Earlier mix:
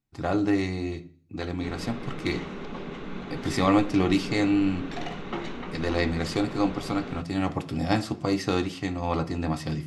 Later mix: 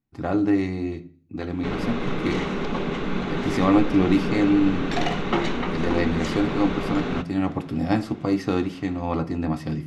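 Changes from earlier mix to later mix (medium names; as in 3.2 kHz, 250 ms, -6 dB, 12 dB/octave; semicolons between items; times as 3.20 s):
speech: add ten-band graphic EQ 250 Hz +5 dB, 4 kHz -4 dB, 8 kHz -7 dB; background +10.0 dB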